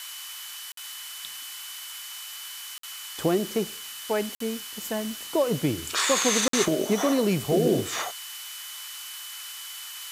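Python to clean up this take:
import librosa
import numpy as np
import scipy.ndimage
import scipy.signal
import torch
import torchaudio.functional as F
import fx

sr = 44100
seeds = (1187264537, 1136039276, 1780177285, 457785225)

y = fx.fix_declick_ar(x, sr, threshold=6.5)
y = fx.notch(y, sr, hz=3000.0, q=30.0)
y = fx.fix_interpolate(y, sr, at_s=(0.72, 2.78, 4.35, 6.48), length_ms=53.0)
y = fx.noise_reduce(y, sr, print_start_s=0.2, print_end_s=0.7, reduce_db=30.0)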